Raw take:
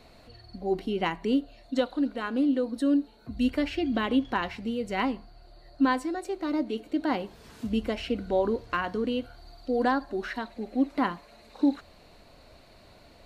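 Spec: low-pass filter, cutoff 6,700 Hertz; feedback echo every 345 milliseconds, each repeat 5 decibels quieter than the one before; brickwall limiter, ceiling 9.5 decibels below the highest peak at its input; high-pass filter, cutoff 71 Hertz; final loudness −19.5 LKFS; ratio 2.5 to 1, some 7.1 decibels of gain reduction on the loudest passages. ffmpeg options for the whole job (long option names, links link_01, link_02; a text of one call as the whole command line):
ffmpeg -i in.wav -af "highpass=71,lowpass=6700,acompressor=threshold=-30dB:ratio=2.5,alimiter=level_in=3dB:limit=-24dB:level=0:latency=1,volume=-3dB,aecho=1:1:345|690|1035|1380|1725|2070|2415:0.562|0.315|0.176|0.0988|0.0553|0.031|0.0173,volume=16dB" out.wav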